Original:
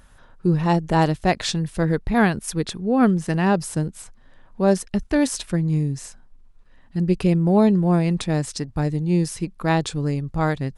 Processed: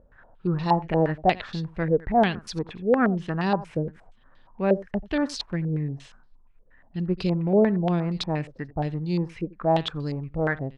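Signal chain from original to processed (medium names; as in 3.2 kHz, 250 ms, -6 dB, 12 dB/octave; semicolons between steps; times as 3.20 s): delay 86 ms -19.5 dB; step-sequenced low-pass 8.5 Hz 520–4400 Hz; trim -6.5 dB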